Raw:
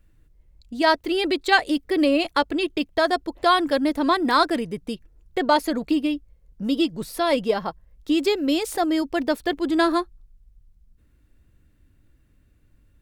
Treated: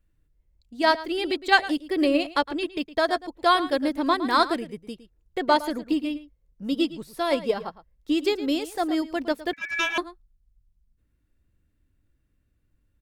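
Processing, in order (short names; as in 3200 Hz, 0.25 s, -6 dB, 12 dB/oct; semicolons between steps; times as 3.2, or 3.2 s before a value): outdoor echo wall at 19 m, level -11 dB; 9.53–9.98 ring modulator 2000 Hz; upward expander 1.5:1, over -34 dBFS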